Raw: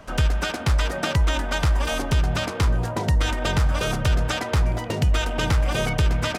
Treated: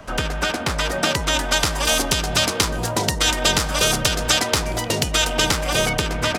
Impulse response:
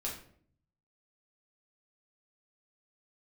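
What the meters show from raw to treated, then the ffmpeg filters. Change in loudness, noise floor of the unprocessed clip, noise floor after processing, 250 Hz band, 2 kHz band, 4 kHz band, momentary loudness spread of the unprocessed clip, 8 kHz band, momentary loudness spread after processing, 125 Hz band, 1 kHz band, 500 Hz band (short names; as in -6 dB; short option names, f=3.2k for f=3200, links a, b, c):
+3.5 dB, -32 dBFS, -27 dBFS, +2.0 dB, +5.5 dB, +10.0 dB, 2 LU, +13.5 dB, 5 LU, -5.0 dB, +4.5 dB, +4.5 dB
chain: -filter_complex "[0:a]acrossover=split=230|3500[a][b][c];[a]asoftclip=type=tanh:threshold=-30dB[d];[c]dynaudnorm=f=350:g=7:m=11dB[e];[d][b][e]amix=inputs=3:normalize=0,volume=4.5dB"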